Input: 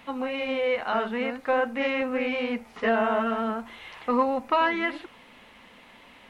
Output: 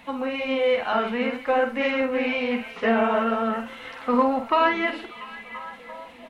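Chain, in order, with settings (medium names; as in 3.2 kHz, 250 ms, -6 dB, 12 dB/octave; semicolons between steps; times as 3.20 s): coarse spectral quantiser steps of 15 dB; doubling 49 ms -8 dB; repeats whose band climbs or falls 342 ms, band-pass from 3.5 kHz, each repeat -0.7 oct, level -10 dB; trim +2.5 dB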